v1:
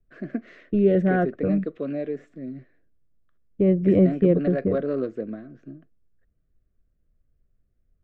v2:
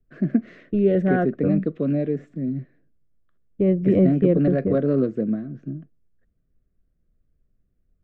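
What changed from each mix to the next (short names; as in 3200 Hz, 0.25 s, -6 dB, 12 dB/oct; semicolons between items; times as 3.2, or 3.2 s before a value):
first voice: add bell 160 Hz +14.5 dB 1.7 oct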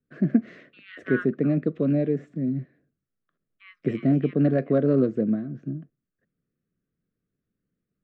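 second voice: add steep high-pass 1100 Hz 96 dB/oct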